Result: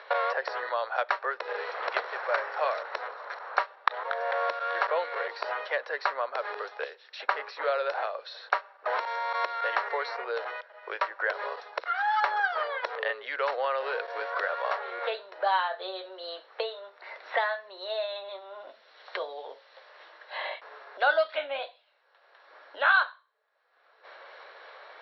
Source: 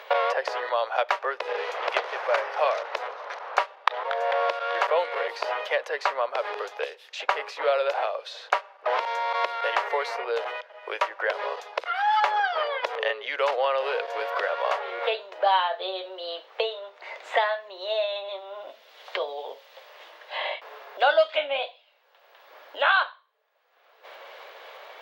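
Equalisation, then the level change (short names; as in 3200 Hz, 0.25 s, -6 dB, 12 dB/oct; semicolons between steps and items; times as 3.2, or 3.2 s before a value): rippled Chebyshev low-pass 5700 Hz, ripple 9 dB; low shelf 350 Hz +8.5 dB; 0.0 dB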